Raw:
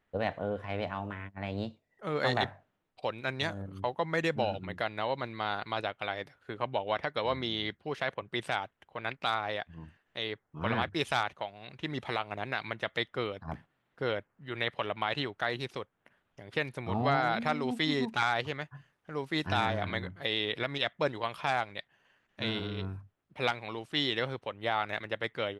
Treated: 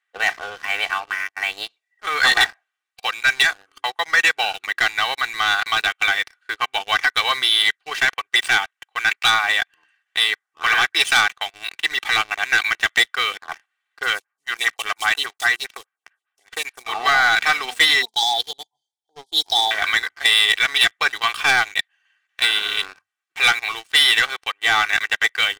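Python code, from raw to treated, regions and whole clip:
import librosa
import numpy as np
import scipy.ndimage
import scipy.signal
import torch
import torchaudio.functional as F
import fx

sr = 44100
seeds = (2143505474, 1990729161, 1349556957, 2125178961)

y = fx.chain(x, sr, fx.block_float(bits=5),
    fx.stagger_phaser(hz=5.0), at=(14.03, 16.86))
y = fx.chain(y, sr, fx.brickwall_bandstop(low_hz=1000.0, high_hz=3100.0),
    fx.band_widen(depth_pct=40), at=(18.02, 19.71))
y = fx.chain(y, sr, fx.lowpass(hz=4400.0, slope=12),
    fx.notch(hz=670.0, q=17.0),
    fx.band_squash(depth_pct=100), at=(22.43, 22.99))
y = scipy.signal.sosfilt(scipy.signal.cheby1(2, 1.0, [1600.0, 9200.0], 'bandpass', fs=sr, output='sos'), y)
y = y + 0.78 * np.pad(y, (int(2.6 * sr / 1000.0), 0))[:len(y)]
y = fx.leveller(y, sr, passes=3)
y = F.gain(torch.from_numpy(y), 8.5).numpy()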